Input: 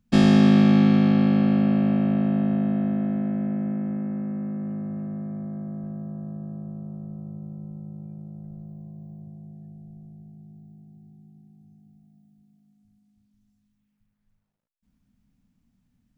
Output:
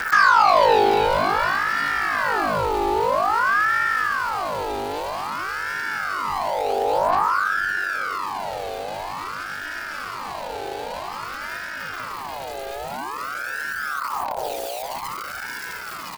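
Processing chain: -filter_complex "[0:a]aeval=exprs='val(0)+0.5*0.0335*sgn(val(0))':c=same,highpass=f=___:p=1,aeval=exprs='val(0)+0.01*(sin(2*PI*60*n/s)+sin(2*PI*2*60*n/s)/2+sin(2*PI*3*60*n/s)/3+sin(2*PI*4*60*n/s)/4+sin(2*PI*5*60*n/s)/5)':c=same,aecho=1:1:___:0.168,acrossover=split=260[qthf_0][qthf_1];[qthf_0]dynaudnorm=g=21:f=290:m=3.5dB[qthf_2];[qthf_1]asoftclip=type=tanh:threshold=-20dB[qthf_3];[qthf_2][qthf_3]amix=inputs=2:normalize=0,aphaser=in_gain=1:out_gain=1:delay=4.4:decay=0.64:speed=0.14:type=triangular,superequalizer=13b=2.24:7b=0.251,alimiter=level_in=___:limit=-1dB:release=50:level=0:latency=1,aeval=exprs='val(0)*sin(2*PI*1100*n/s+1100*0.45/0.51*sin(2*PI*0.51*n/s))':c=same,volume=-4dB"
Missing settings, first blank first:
160, 345, 10dB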